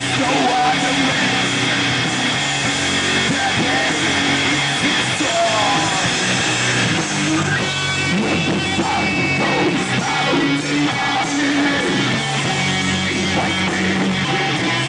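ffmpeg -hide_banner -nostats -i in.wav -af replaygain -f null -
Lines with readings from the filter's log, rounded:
track_gain = -0.9 dB
track_peak = 0.393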